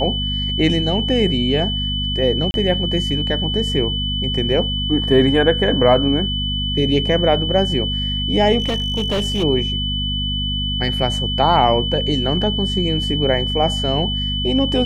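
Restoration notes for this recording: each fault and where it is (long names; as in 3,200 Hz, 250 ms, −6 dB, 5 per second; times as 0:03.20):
mains hum 50 Hz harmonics 5 −24 dBFS
whistle 3,000 Hz −22 dBFS
0:02.51–0:02.54: drop-out 31 ms
0:08.59–0:09.44: clipping −15.5 dBFS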